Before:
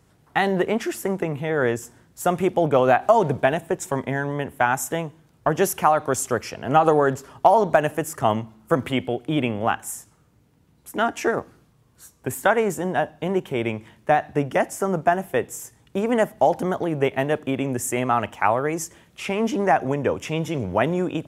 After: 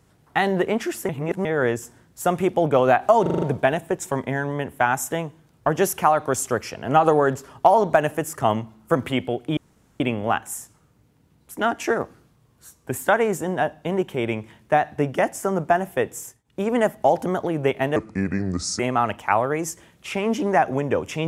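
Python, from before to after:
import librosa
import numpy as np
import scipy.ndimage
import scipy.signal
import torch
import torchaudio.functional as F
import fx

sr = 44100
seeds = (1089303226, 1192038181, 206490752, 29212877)

y = fx.edit(x, sr, fx.reverse_span(start_s=1.09, length_s=0.36),
    fx.stutter(start_s=3.22, slice_s=0.04, count=6),
    fx.insert_room_tone(at_s=9.37, length_s=0.43),
    fx.fade_down_up(start_s=15.54, length_s=0.53, db=-22.5, fade_s=0.26, curve='qsin'),
    fx.speed_span(start_s=17.33, length_s=0.6, speed=0.72), tone=tone)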